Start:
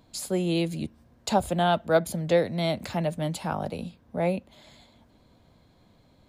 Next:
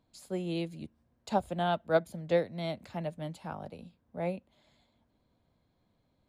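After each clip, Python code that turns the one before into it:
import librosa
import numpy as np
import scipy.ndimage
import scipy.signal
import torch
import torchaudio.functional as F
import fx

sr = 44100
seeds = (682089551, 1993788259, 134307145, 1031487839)

y = fx.high_shelf(x, sr, hz=5500.0, db=-6.0)
y = fx.upward_expand(y, sr, threshold_db=-36.0, expansion=1.5)
y = F.gain(torch.from_numpy(y), -4.0).numpy()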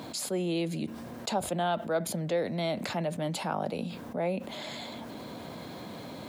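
y = scipy.signal.sosfilt(scipy.signal.butter(2, 190.0, 'highpass', fs=sr, output='sos'), x)
y = fx.env_flatten(y, sr, amount_pct=70)
y = F.gain(torch.from_numpy(y), -4.5).numpy()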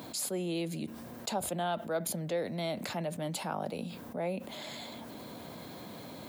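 y = fx.high_shelf(x, sr, hz=10000.0, db=11.5)
y = F.gain(torch.from_numpy(y), -4.0).numpy()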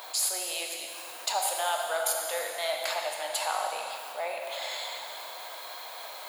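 y = scipy.signal.sosfilt(scipy.signal.butter(4, 700.0, 'highpass', fs=sr, output='sos'), x)
y = fx.rev_plate(y, sr, seeds[0], rt60_s=2.7, hf_ratio=0.95, predelay_ms=0, drr_db=0.5)
y = F.gain(torch.from_numpy(y), 6.5).numpy()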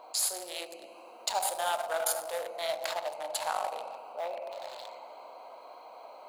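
y = fx.wiener(x, sr, points=25)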